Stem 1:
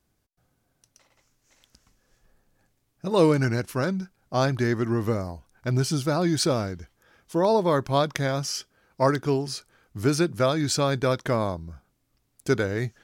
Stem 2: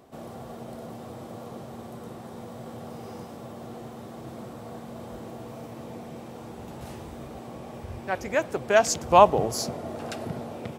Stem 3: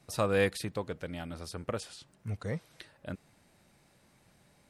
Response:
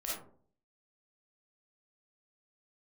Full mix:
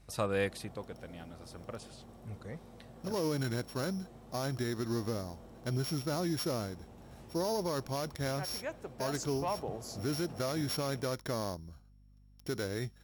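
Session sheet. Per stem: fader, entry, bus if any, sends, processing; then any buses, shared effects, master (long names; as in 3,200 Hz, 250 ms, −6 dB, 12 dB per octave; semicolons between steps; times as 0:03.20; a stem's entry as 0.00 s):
−8.5 dB, 0.00 s, bus A, no send, samples sorted by size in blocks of 8 samples; low-shelf EQ 110 Hz −8.5 dB; mains hum 50 Hz, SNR 28 dB
−15.0 dB, 0.30 s, bus A, no send, soft clipping −6 dBFS, distortion −18 dB
−2.0 dB, 0.00 s, no bus, no send, automatic ducking −7 dB, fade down 1.00 s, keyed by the first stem
bus A: 0.0 dB, low-shelf EQ 160 Hz +4.5 dB; brickwall limiter −25.5 dBFS, peak gain reduction 9.5 dB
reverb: not used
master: no processing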